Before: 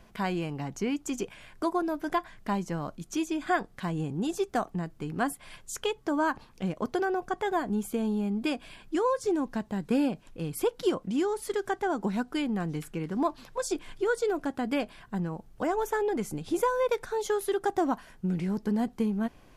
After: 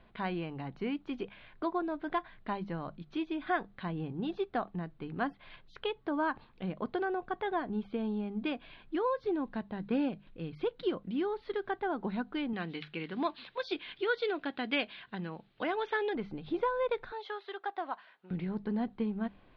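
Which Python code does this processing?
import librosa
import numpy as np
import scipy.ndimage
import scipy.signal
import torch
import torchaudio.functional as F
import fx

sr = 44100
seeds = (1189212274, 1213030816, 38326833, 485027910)

y = fx.peak_eq(x, sr, hz=890.0, db=-5.0, octaves=1.0, at=(10.09, 11.21))
y = fx.weighting(y, sr, curve='D', at=(12.53, 16.15))
y = fx.highpass(y, sr, hz=730.0, slope=12, at=(17.12, 18.31))
y = scipy.signal.sosfilt(scipy.signal.ellip(4, 1.0, 50, 4000.0, 'lowpass', fs=sr, output='sos'), y)
y = fx.hum_notches(y, sr, base_hz=50, count=4)
y = y * 10.0 ** (-4.0 / 20.0)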